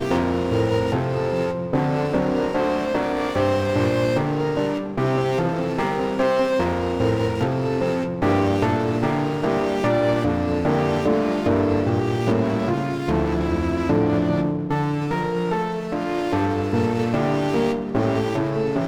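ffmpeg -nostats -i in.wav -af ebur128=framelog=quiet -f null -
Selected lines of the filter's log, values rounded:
Integrated loudness:
  I:         -21.8 LUFS
  Threshold: -31.8 LUFS
Loudness range:
  LRA:         1.6 LU
  Threshold: -41.8 LUFS
  LRA low:   -22.6 LUFS
  LRA high:  -21.0 LUFS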